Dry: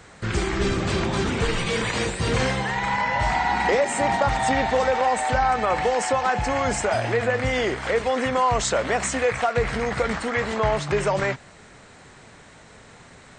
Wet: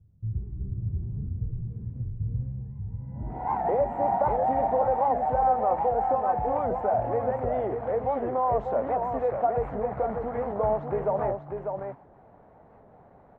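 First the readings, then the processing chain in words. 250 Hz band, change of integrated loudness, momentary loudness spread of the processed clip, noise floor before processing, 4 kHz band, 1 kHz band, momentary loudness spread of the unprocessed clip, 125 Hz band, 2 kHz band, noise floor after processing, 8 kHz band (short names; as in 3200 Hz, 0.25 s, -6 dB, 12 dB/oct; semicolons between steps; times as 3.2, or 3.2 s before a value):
-8.5 dB, -5.0 dB, 11 LU, -48 dBFS, under -35 dB, -2.5 dB, 4 LU, -4.0 dB, -22.0 dB, -55 dBFS, under -40 dB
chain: low-pass sweep 110 Hz -> 750 Hz, 2.99–3.5; bell 5200 Hz -2.5 dB; echo 0.595 s -5.5 dB; record warp 78 rpm, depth 160 cents; gain -8.5 dB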